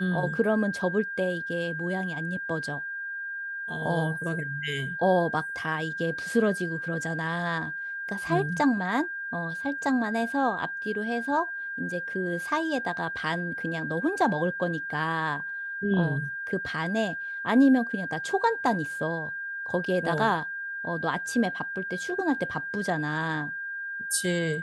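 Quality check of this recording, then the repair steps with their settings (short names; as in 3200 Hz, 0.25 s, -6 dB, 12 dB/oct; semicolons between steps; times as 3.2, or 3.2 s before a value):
tone 1600 Hz -32 dBFS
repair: notch 1600 Hz, Q 30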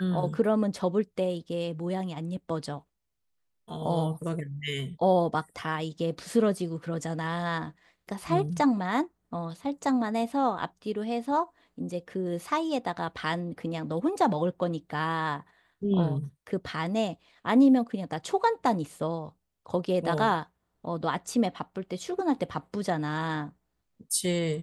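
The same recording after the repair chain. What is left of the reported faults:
none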